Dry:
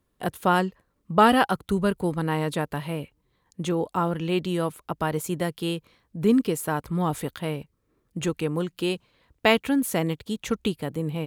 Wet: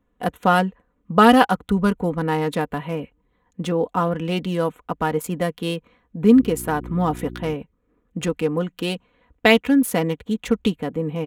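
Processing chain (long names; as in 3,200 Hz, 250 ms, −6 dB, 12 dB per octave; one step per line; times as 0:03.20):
adaptive Wiener filter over 9 samples
comb filter 4.1 ms, depth 56%
0:06.35–0:07.53: hum with harmonics 60 Hz, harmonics 6, −39 dBFS −2 dB per octave
level +3.5 dB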